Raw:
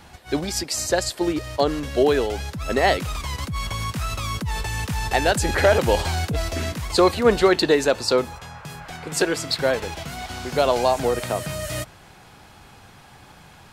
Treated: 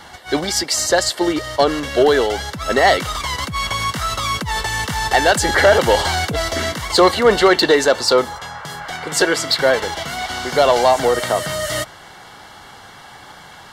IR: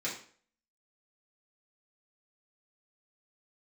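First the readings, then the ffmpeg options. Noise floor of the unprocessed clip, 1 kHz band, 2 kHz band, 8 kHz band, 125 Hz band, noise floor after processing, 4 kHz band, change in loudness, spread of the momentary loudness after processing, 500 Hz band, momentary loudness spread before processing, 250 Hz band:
-48 dBFS, +7.0 dB, +8.0 dB, +6.5 dB, -1.0 dB, -41 dBFS, +8.0 dB, +5.5 dB, 11 LU, +5.0 dB, 12 LU, +3.0 dB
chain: -filter_complex "[0:a]asplit=2[s0][s1];[s1]highpass=f=720:p=1,volume=3.98,asoftclip=type=tanh:threshold=0.473[s2];[s0][s2]amix=inputs=2:normalize=0,lowpass=f=5500:p=1,volume=0.501,asuperstop=centerf=2500:order=20:qfactor=8,volume=1.5"

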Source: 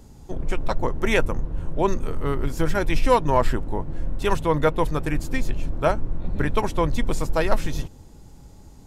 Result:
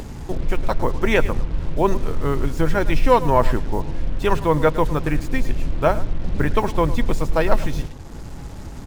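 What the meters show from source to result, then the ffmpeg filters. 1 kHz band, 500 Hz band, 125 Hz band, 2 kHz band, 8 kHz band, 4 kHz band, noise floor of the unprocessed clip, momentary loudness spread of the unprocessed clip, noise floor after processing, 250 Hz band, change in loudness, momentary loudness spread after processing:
+3.0 dB, +3.5 dB, +3.5 dB, +2.0 dB, -1.0 dB, +1.0 dB, -46 dBFS, 10 LU, -34 dBFS, +3.5 dB, +3.0 dB, 12 LU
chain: -filter_complex "[0:a]aemphasis=mode=reproduction:type=cd,aecho=1:1:108|216:0.158|0.0285,asplit=2[s0][s1];[s1]acompressor=mode=upward:threshold=0.112:ratio=2.5,volume=1.19[s2];[s0][s2]amix=inputs=2:normalize=0,acrusher=bits=5:mix=0:aa=0.5,volume=0.631"

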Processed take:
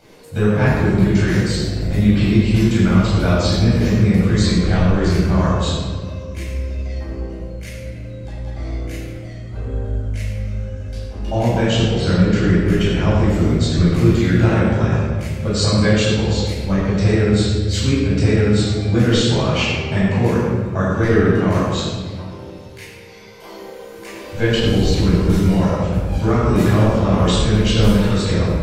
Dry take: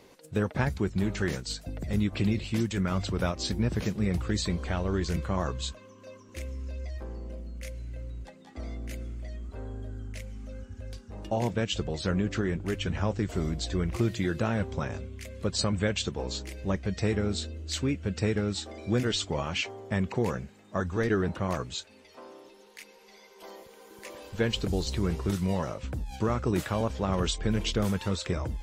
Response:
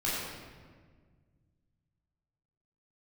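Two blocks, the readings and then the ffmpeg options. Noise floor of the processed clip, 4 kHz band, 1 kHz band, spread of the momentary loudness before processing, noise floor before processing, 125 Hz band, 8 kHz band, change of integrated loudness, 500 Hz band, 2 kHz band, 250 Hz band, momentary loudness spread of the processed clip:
-35 dBFS, +10.5 dB, +11.0 dB, 15 LU, -54 dBFS, +15.0 dB, +8.5 dB, +14.0 dB, +12.5 dB, +12.0 dB, +14.0 dB, 15 LU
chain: -filter_complex "[1:a]atrim=start_sample=2205[s0];[0:a][s0]afir=irnorm=-1:irlink=0,volume=1.5"

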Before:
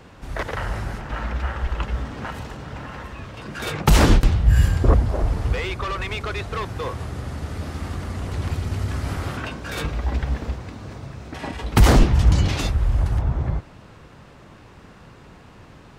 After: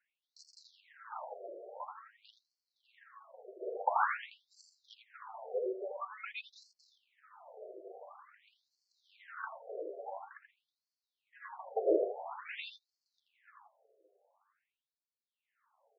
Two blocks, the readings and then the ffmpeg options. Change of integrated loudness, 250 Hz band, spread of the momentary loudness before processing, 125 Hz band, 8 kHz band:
-16.0 dB, -22.5 dB, 17 LU, under -40 dB, under -30 dB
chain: -af "afftdn=nr=12:nf=-34,flanger=delay=8.9:depth=1.5:regen=33:speed=0.94:shape=sinusoidal,adynamicsmooth=sensitivity=4:basefreq=1200,aecho=1:1:82:0.447,afftfilt=real='re*between(b*sr/1024,480*pow(6000/480,0.5+0.5*sin(2*PI*0.48*pts/sr))/1.41,480*pow(6000/480,0.5+0.5*sin(2*PI*0.48*pts/sr))*1.41)':imag='im*between(b*sr/1024,480*pow(6000/480,0.5+0.5*sin(2*PI*0.48*pts/sr))/1.41,480*pow(6000/480,0.5+0.5*sin(2*PI*0.48*pts/sr))*1.41)':win_size=1024:overlap=0.75,volume=0.891"

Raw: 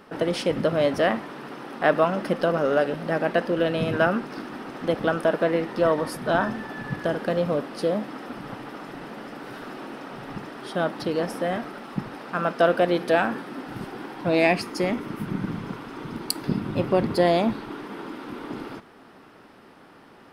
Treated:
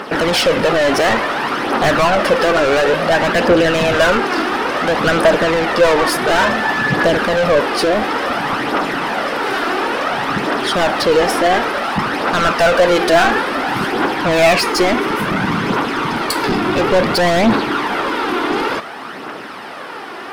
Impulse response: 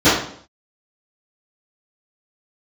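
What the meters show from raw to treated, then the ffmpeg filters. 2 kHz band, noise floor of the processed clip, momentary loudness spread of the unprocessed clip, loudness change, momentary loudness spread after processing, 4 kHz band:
+14.5 dB, -29 dBFS, 16 LU, +10.0 dB, 6 LU, +16.0 dB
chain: -filter_complex "[0:a]asplit=2[s0][s1];[s1]highpass=f=720:p=1,volume=31.6,asoftclip=type=tanh:threshold=0.501[s2];[s0][s2]amix=inputs=2:normalize=0,lowpass=f=5400:p=1,volume=0.501,aphaser=in_gain=1:out_gain=1:delay=3:decay=0.41:speed=0.57:type=triangular"

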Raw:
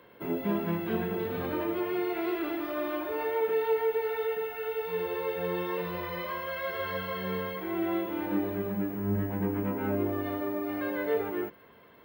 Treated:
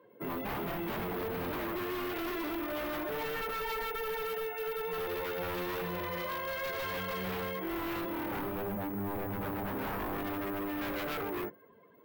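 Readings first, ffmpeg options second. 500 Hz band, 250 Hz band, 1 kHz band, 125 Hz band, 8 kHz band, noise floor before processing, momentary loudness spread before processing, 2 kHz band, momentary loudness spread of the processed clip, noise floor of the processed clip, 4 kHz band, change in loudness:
-6.5 dB, -6.0 dB, -1.0 dB, -6.0 dB, no reading, -56 dBFS, 5 LU, -1.0 dB, 1 LU, -59 dBFS, +2.0 dB, -4.5 dB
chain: -af "afftdn=nr=16:nf=-51,aeval=exprs='0.0282*(abs(mod(val(0)/0.0282+3,4)-2)-1)':c=same"

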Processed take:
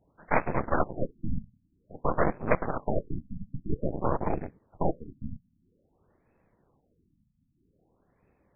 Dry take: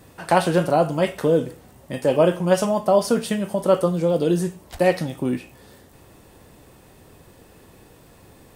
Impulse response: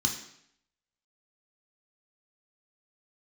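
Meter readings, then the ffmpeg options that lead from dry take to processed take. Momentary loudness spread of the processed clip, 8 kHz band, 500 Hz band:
14 LU, under -40 dB, -13.5 dB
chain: -af "afftfilt=real='hypot(re,im)*cos(2*PI*random(0))':imag='hypot(re,im)*sin(2*PI*random(1))':win_size=512:overlap=0.75,aeval=exprs='0.376*(cos(1*acos(clip(val(0)/0.376,-1,1)))-cos(1*PI/2))+0.00299*(cos(2*acos(clip(val(0)/0.376,-1,1)))-cos(2*PI/2))+0.0944*(cos(3*acos(clip(val(0)/0.376,-1,1)))-cos(3*PI/2))+0.075*(cos(6*acos(clip(val(0)/0.376,-1,1)))-cos(6*PI/2))':c=same,afftfilt=real='re*lt(b*sr/1024,250*pow(2700/250,0.5+0.5*sin(2*PI*0.51*pts/sr)))':imag='im*lt(b*sr/1024,250*pow(2700/250,0.5+0.5*sin(2*PI*0.51*pts/sr)))':win_size=1024:overlap=0.75"

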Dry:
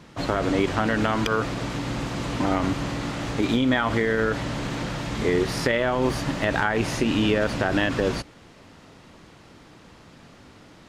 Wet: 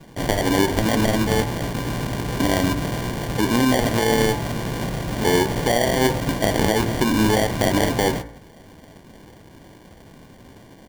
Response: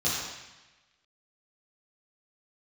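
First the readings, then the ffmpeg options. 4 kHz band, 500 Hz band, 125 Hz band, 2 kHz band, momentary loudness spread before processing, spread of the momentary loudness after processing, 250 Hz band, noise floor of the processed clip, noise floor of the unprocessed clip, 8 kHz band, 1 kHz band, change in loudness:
+5.0 dB, +3.5 dB, +4.5 dB, +1.0 dB, 8 LU, 8 LU, +3.5 dB, -47 dBFS, -50 dBFS, +10.0 dB, +3.5 dB, +3.5 dB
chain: -filter_complex "[0:a]asplit=2[s0][s1];[s1]adelay=18,volume=0.2[s2];[s0][s2]amix=inputs=2:normalize=0,acrusher=samples=34:mix=1:aa=0.000001,bandreject=f=56.87:t=h:w=4,bandreject=f=113.74:t=h:w=4,bandreject=f=170.61:t=h:w=4,bandreject=f=227.48:t=h:w=4,bandreject=f=284.35:t=h:w=4,bandreject=f=341.22:t=h:w=4,bandreject=f=398.09:t=h:w=4,bandreject=f=454.96:t=h:w=4,bandreject=f=511.83:t=h:w=4,bandreject=f=568.7:t=h:w=4,bandreject=f=625.57:t=h:w=4,bandreject=f=682.44:t=h:w=4,bandreject=f=739.31:t=h:w=4,bandreject=f=796.18:t=h:w=4,bandreject=f=853.05:t=h:w=4,bandreject=f=909.92:t=h:w=4,bandreject=f=966.79:t=h:w=4,bandreject=f=1023.66:t=h:w=4,bandreject=f=1080.53:t=h:w=4,bandreject=f=1137.4:t=h:w=4,bandreject=f=1194.27:t=h:w=4,bandreject=f=1251.14:t=h:w=4,bandreject=f=1308.01:t=h:w=4,bandreject=f=1364.88:t=h:w=4,bandreject=f=1421.75:t=h:w=4,bandreject=f=1478.62:t=h:w=4,bandreject=f=1535.49:t=h:w=4,bandreject=f=1592.36:t=h:w=4,bandreject=f=1649.23:t=h:w=4,bandreject=f=1706.1:t=h:w=4,bandreject=f=1762.97:t=h:w=4,bandreject=f=1819.84:t=h:w=4,bandreject=f=1876.71:t=h:w=4,bandreject=f=1933.58:t=h:w=4,bandreject=f=1990.45:t=h:w=4,bandreject=f=2047.32:t=h:w=4,bandreject=f=2104.19:t=h:w=4,bandreject=f=2161.06:t=h:w=4,bandreject=f=2217.93:t=h:w=4,bandreject=f=2274.8:t=h:w=4,volume=1.58"

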